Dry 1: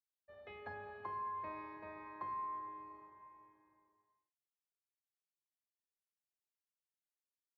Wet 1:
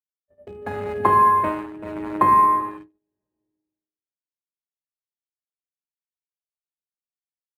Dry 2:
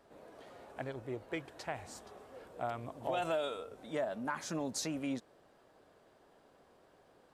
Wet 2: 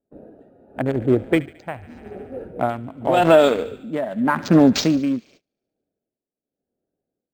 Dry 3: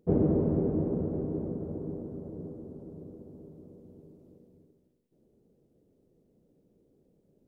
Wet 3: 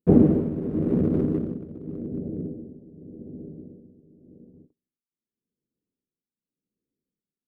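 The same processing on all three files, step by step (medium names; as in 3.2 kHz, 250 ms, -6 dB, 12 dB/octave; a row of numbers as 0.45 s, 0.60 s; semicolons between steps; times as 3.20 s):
local Wiener filter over 41 samples; feedback echo behind a high-pass 72 ms, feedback 75%, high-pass 1.6 kHz, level -16 dB; gate -60 dBFS, range -31 dB; tremolo 0.87 Hz, depth 76%; peaking EQ 240 Hz +6.5 dB 1.1 oct; spectral noise reduction 6 dB; decimation joined by straight lines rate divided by 4×; peak normalisation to -3 dBFS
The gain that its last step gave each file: +28.5 dB, +22.0 dB, +13.0 dB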